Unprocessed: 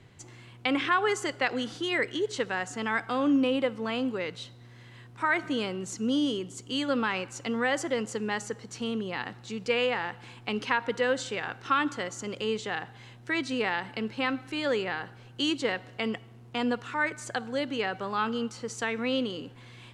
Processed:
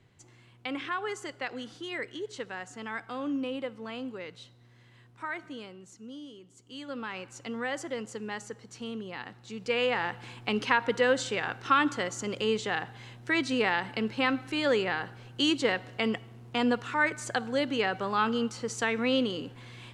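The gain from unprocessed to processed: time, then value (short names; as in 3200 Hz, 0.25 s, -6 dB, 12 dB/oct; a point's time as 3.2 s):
5.09 s -8 dB
6.3 s -18.5 dB
7.31 s -6 dB
9.4 s -6 dB
10.05 s +2 dB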